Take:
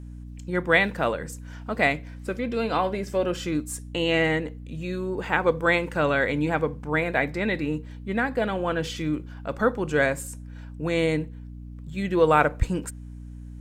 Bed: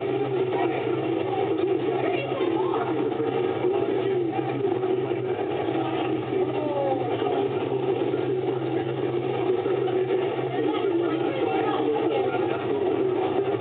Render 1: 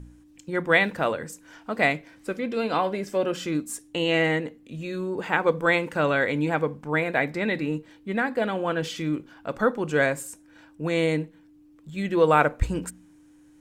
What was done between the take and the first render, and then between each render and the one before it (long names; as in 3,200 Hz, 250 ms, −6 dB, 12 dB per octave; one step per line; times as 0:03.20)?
hum removal 60 Hz, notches 4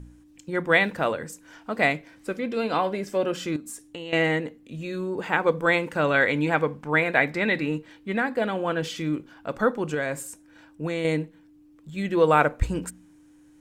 0:03.56–0:04.13: downward compressor 4 to 1, threshold −34 dBFS
0:06.14–0:08.18: parametric band 2,100 Hz +4.5 dB 2.6 octaves
0:09.94–0:11.05: downward compressor 5 to 1, threshold −23 dBFS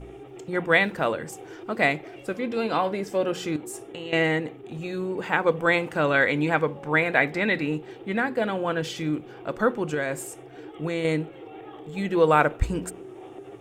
mix in bed −18 dB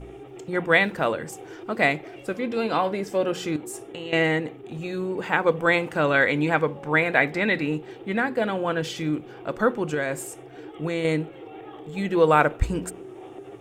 level +1 dB